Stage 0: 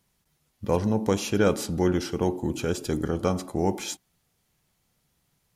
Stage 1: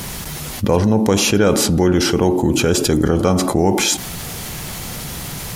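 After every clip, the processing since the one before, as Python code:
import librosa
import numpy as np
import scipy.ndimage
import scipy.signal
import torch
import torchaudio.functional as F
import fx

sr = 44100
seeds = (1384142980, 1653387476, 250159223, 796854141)

y = fx.env_flatten(x, sr, amount_pct=70)
y = F.gain(torch.from_numpy(y), 6.0).numpy()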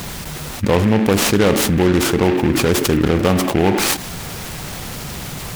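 y = fx.noise_mod_delay(x, sr, seeds[0], noise_hz=1700.0, depth_ms=0.075)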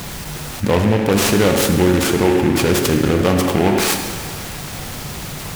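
y = fx.rev_plate(x, sr, seeds[1], rt60_s=1.9, hf_ratio=0.9, predelay_ms=0, drr_db=4.5)
y = F.gain(torch.from_numpy(y), -1.0).numpy()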